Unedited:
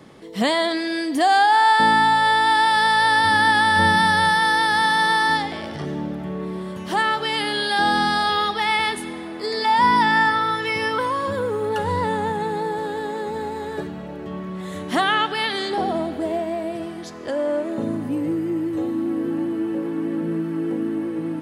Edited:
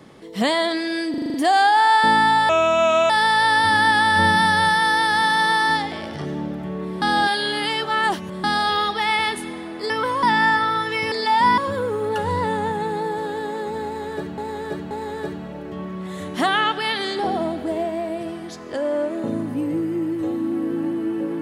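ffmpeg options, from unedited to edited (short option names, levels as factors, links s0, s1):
-filter_complex "[0:a]asplit=17[s0][s1][s2][s3][s4][s5][s6][s7][s8][s9][s10][s11][s12][s13][s14][s15][s16];[s0]atrim=end=1.142[s17];[s1]atrim=start=1.098:end=1.142[s18];[s2]atrim=start=1.098:end=1.142[s19];[s3]atrim=start=1.098:end=1.142[s20];[s4]atrim=start=1.098:end=1.142[s21];[s5]atrim=start=1.098:end=1.142[s22];[s6]atrim=start=1.098:end=2.254[s23];[s7]atrim=start=2.25:end=2.7,asetpts=PTS-STARTPTS,asetrate=32634,aresample=44100[s24];[s8]atrim=start=2.696:end=6.622[s25];[s9]atrim=start=6.618:end=8.042,asetpts=PTS-STARTPTS,areverse[s26];[s10]atrim=start=8.038:end=9.502[s27];[s11]atrim=start=10.848:end=11.182[s28];[s12]atrim=start=9.958:end=10.852[s29];[s13]atrim=start=9.498:end=9.962[s30];[s14]atrim=start=11.178:end=13.982[s31];[s15]atrim=start=13.448:end=13.982[s32];[s16]atrim=start=13.448[s33];[s17][s18]acrossfade=d=0.004:c1=hsin:c2=hsin[s34];[s34][s19]acrossfade=d=0.004:c1=hsin:c2=hsin[s35];[s35][s20]acrossfade=d=0.004:c1=hsin:c2=hsin[s36];[s36][s21]acrossfade=d=0.004:c1=hsin:c2=hsin[s37];[s37][s22]acrossfade=d=0.004:c1=hsin:c2=hsin[s38];[s38][s23]acrossfade=d=0.004:c1=hsin:c2=hsin[s39];[s39][s24]acrossfade=d=0.004:c1=hsin:c2=hsin[s40];[s40][s25]acrossfade=d=0.004:c1=hsin:c2=hsin[s41];[s41][s26]acrossfade=d=0.004:c1=hsin:c2=hsin[s42];[s42][s27]acrossfade=d=0.004:c1=hsin:c2=hsin[s43];[s43][s28]acrossfade=d=0.004:c1=hsin:c2=hsin[s44];[s44][s29]acrossfade=d=0.004:c1=hsin:c2=hsin[s45];[s45][s30]acrossfade=d=0.004:c1=hsin:c2=hsin[s46];[s46][s31]acrossfade=d=0.004:c1=hsin:c2=hsin[s47];[s47][s32]acrossfade=d=0.004:c1=hsin:c2=hsin[s48];[s48][s33]acrossfade=d=0.004:c1=hsin:c2=hsin"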